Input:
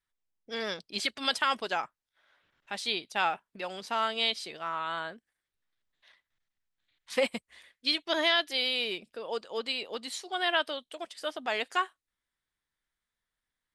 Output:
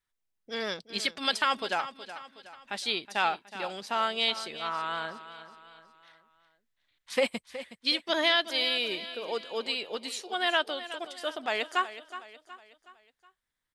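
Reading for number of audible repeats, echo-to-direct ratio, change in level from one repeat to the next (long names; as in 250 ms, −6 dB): 4, −12.5 dB, −6.5 dB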